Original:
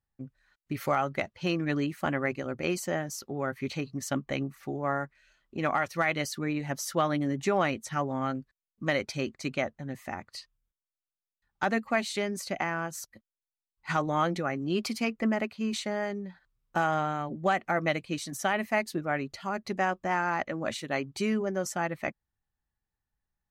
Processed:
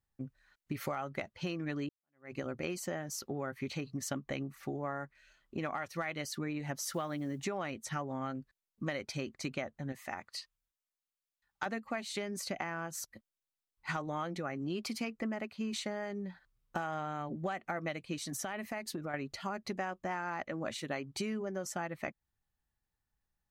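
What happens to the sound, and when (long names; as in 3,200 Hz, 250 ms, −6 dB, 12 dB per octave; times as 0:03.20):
0:01.89–0:02.37: fade in exponential
0:06.89–0:07.45: one scale factor per block 7 bits
0:09.92–0:11.66: low-shelf EQ 450 Hz −10.5 dB
0:18.26–0:19.14: downward compressor 5 to 1, threshold −34 dBFS
whole clip: downward compressor, threshold −34 dBFS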